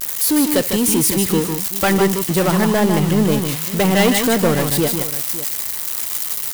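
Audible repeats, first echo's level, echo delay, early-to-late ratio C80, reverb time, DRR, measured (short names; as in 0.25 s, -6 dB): 3, -19.5 dB, 67 ms, none, none, none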